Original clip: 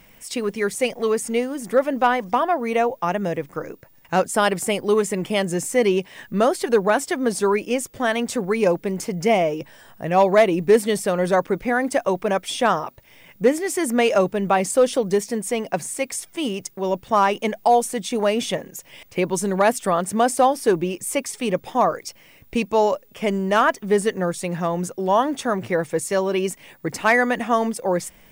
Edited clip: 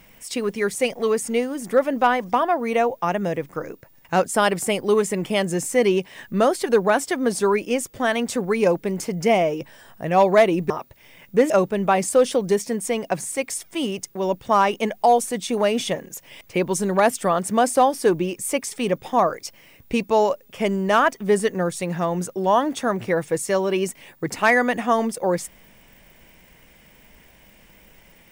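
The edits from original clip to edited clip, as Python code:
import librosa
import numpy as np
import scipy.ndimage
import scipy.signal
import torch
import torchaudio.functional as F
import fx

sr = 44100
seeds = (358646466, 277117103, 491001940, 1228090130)

y = fx.edit(x, sr, fx.cut(start_s=10.7, length_s=2.07),
    fx.cut(start_s=13.57, length_s=0.55), tone=tone)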